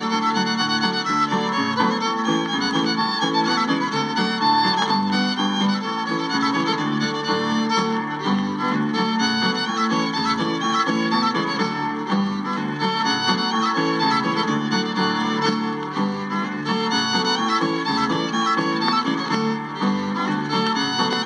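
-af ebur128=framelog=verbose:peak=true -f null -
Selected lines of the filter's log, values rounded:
Integrated loudness:
  I:         -20.9 LUFS
  Threshold: -30.9 LUFS
Loudness range:
  LRA:         1.6 LU
  Threshold: -40.9 LUFS
  LRA low:   -21.5 LUFS
  LRA high:  -19.9 LUFS
True peak:
  Peak:       -3.6 dBFS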